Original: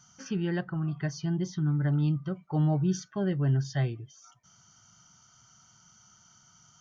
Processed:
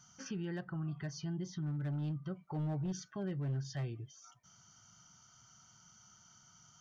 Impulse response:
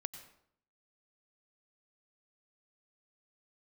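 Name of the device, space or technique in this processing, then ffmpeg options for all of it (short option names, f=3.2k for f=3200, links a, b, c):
clipper into limiter: -af "asoftclip=type=hard:threshold=-22dB,alimiter=level_in=5.5dB:limit=-24dB:level=0:latency=1:release=163,volume=-5.5dB,volume=-3dB"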